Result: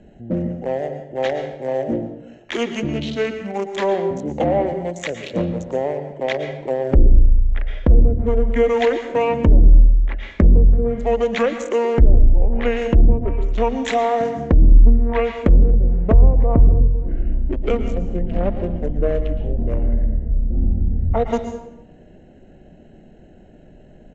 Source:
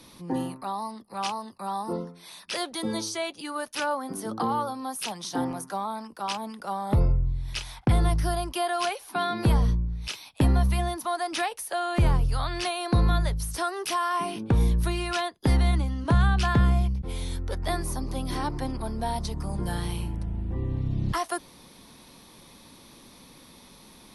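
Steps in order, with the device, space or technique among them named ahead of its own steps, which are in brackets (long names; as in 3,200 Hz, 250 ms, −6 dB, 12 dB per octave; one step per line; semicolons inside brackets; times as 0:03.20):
adaptive Wiener filter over 25 samples
monster voice (pitch shifter −7 semitones; low-shelf EQ 120 Hz +8.5 dB; convolution reverb RT60 0.80 s, pre-delay 106 ms, DRR 8 dB)
0:11.09–0:11.50: low-pass filter 8,000 Hz
treble cut that deepens with the level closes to 440 Hz, closed at −13.5 dBFS
octave-band graphic EQ 125/250/500/2,000 Hz −10/+5/+6/+6 dB
level +5 dB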